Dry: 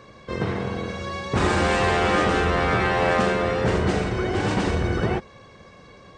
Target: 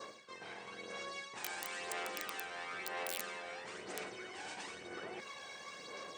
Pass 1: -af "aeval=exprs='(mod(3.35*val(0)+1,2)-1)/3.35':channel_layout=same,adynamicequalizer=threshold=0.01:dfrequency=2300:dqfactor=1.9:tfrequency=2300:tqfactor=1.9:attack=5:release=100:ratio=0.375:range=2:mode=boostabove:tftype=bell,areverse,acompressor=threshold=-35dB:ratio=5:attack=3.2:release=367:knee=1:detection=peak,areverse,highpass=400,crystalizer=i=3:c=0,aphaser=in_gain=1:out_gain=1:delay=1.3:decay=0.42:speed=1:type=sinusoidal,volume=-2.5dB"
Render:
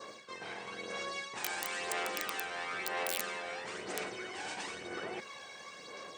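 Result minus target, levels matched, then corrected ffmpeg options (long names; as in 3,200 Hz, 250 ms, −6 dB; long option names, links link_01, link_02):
downward compressor: peak gain reduction −5 dB
-af "aeval=exprs='(mod(3.35*val(0)+1,2)-1)/3.35':channel_layout=same,adynamicequalizer=threshold=0.01:dfrequency=2300:dqfactor=1.9:tfrequency=2300:tqfactor=1.9:attack=5:release=100:ratio=0.375:range=2:mode=boostabove:tftype=bell,areverse,acompressor=threshold=-41.5dB:ratio=5:attack=3.2:release=367:knee=1:detection=peak,areverse,highpass=400,crystalizer=i=3:c=0,aphaser=in_gain=1:out_gain=1:delay=1.3:decay=0.42:speed=1:type=sinusoidal,volume=-2.5dB"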